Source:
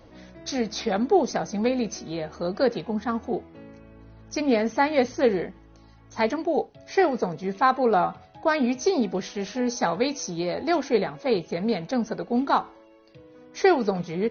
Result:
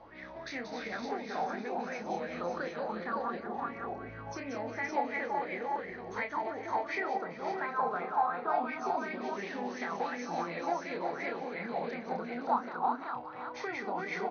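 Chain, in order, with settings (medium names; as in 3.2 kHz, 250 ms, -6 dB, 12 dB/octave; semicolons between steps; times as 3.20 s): chunks repeated in reverse 227 ms, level -7 dB; recorder AGC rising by 5.3 dB/s; bass shelf 160 Hz -7 dB; compression 4:1, threshold -35 dBFS, peak gain reduction 17 dB; distance through air 160 m; doubling 29 ms -6 dB; multi-tap echo 182/424/517/562 ms -6/-15/-8.5/-3.5 dB; sweeping bell 2.8 Hz 800–2200 Hz +18 dB; trim -7 dB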